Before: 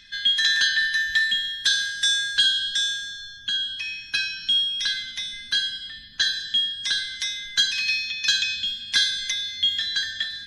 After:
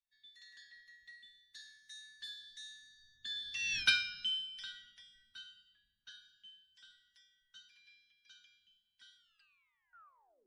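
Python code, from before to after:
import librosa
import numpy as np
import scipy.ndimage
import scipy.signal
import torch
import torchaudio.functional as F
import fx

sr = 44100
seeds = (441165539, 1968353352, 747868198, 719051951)

y = fx.tape_stop_end(x, sr, length_s=1.37)
y = fx.doppler_pass(y, sr, speed_mps=23, closest_m=1.3, pass_at_s=3.78)
y = fx.band_widen(y, sr, depth_pct=40)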